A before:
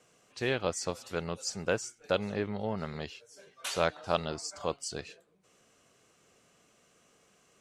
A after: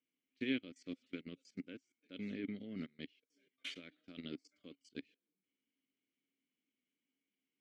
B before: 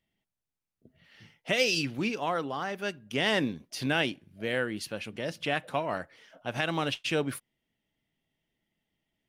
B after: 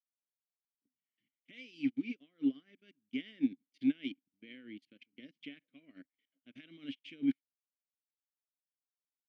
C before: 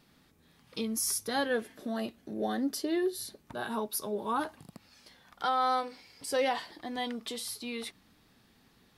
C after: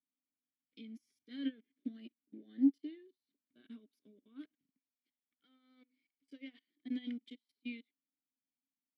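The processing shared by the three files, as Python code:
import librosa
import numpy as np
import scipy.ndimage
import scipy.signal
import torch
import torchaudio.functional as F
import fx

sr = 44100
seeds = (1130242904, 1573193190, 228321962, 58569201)

y = fx.level_steps(x, sr, step_db=19)
y = fx.vowel_filter(y, sr, vowel='i')
y = fx.upward_expand(y, sr, threshold_db=-60.0, expansion=2.5)
y = y * librosa.db_to_amplitude(16.0)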